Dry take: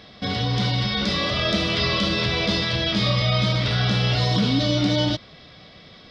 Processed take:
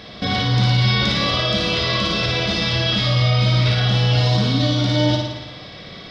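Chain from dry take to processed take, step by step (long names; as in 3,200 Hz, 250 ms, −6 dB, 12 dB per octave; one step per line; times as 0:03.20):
in parallel at −1.5 dB: compressor whose output falls as the input rises −25 dBFS
on the sum: brickwall limiter −13 dBFS, peak gain reduction 7 dB
flutter between parallel walls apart 9.7 metres, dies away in 0.94 s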